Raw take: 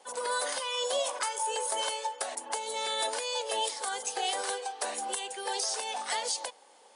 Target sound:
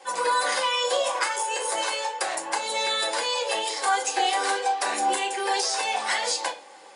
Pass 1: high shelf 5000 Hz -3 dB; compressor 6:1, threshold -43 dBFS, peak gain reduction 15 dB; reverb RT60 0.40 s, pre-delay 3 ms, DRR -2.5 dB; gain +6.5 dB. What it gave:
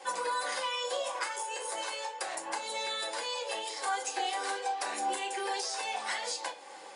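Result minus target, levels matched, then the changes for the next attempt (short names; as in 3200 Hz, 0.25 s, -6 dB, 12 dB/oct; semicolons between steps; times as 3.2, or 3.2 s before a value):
compressor: peak gain reduction +9.5 dB
change: compressor 6:1, threshold -31.5 dBFS, peak gain reduction 5.5 dB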